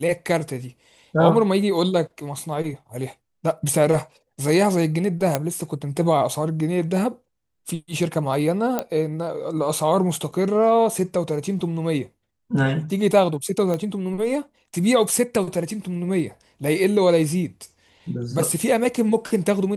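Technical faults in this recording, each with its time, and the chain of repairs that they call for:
5.35 pop -5 dBFS
8.79 pop -9 dBFS
13.74 pop -14 dBFS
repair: de-click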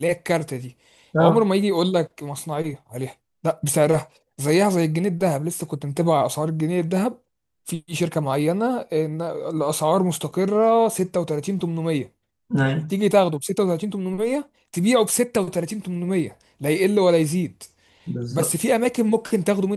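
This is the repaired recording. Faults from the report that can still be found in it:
none

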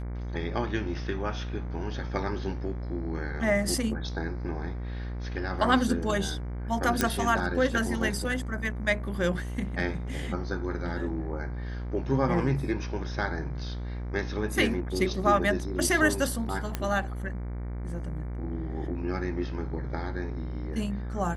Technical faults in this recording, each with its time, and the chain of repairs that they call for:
buzz 60 Hz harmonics 39 -34 dBFS
7.01 pop -8 dBFS
16.75 pop -14 dBFS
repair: de-click; de-hum 60 Hz, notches 39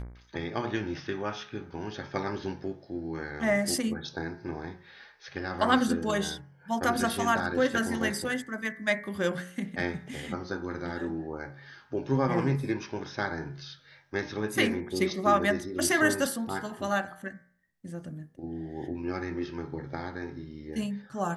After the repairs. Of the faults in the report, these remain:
7.01 pop

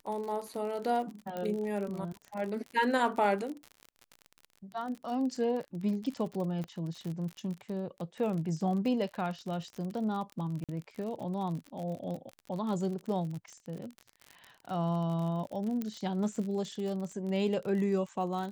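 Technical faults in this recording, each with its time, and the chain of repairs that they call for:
crackle 49/s -37 dBFS
1.37 pop -24 dBFS
6.64 pop -27 dBFS
10.64–10.69 gap 47 ms
15.82 pop -22 dBFS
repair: de-click; interpolate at 10.64, 47 ms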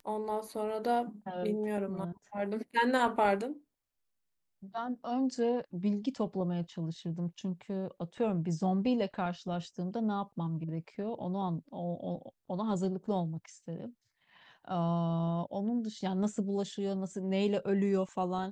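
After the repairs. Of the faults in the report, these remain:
6.64 pop

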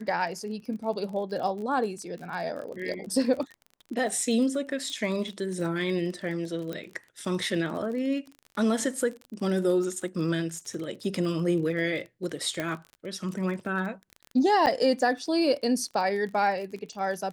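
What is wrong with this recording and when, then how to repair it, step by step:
crackle 35/s -35 dBFS
4.9 pop
6.73 pop -21 dBFS
12.6 pop -16 dBFS
14.66–14.67 gap 8.6 ms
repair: de-click; interpolate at 14.66, 8.6 ms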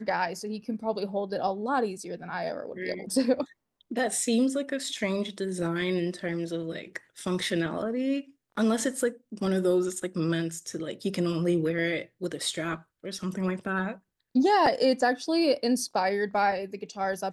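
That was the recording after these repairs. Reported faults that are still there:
12.6 pop

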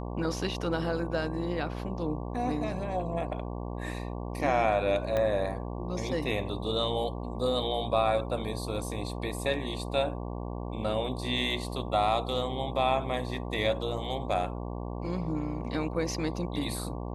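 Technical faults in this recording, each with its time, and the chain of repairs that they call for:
buzz 60 Hz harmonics 19 -36 dBFS
5.17 pop -17 dBFS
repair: de-click; de-hum 60 Hz, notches 19

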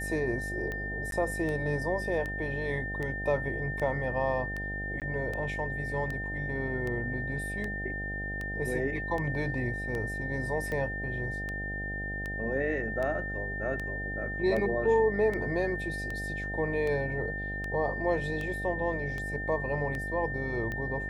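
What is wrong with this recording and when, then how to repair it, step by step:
buzz 50 Hz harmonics 16 -38 dBFS
tick 78 rpm -23 dBFS
tone 1800 Hz -35 dBFS
1.11–1.12 gap 12 ms
5–5.02 gap 18 ms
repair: de-click; de-hum 50 Hz, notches 16; notch 1800 Hz, Q 30; interpolate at 1.11, 12 ms; interpolate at 5, 18 ms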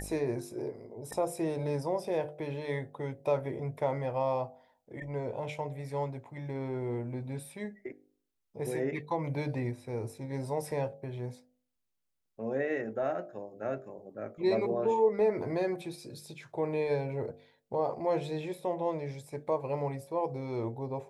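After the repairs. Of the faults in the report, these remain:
none

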